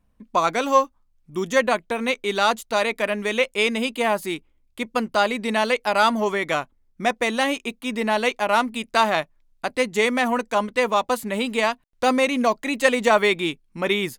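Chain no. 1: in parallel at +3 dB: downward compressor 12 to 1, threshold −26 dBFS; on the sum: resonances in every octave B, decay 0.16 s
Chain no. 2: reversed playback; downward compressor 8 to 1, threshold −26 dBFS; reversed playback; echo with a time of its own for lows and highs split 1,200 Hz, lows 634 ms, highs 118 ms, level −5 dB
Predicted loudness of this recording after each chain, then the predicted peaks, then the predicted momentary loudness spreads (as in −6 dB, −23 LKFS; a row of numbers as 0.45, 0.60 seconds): −29.5, −29.5 LKFS; −11.5, −13.5 dBFS; 14, 4 LU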